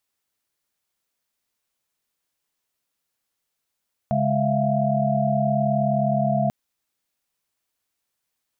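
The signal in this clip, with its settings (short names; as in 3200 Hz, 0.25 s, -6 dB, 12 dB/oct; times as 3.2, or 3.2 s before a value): chord C#3/G#3/E5/F5 sine, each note -24 dBFS 2.39 s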